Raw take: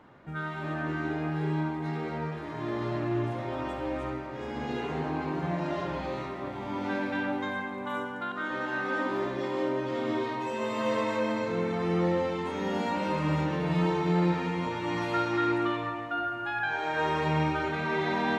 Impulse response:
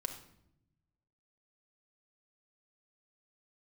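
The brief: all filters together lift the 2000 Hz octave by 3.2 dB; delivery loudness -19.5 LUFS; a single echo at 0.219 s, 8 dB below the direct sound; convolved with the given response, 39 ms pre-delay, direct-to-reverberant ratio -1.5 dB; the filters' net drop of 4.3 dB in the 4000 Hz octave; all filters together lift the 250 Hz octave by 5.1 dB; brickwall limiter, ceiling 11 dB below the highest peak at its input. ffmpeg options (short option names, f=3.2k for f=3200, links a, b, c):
-filter_complex "[0:a]equalizer=f=250:t=o:g=7.5,equalizer=f=2k:t=o:g=6,equalizer=f=4k:t=o:g=-9,alimiter=limit=-22dB:level=0:latency=1,aecho=1:1:219:0.398,asplit=2[a][b];[1:a]atrim=start_sample=2205,adelay=39[c];[b][c]afir=irnorm=-1:irlink=0,volume=2dB[d];[a][d]amix=inputs=2:normalize=0,volume=5.5dB"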